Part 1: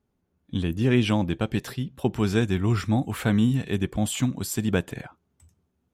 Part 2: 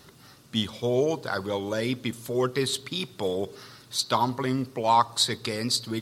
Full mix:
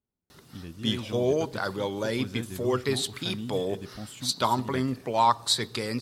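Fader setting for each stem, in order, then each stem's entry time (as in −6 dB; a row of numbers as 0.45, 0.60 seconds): −15.0, −1.0 decibels; 0.00, 0.30 seconds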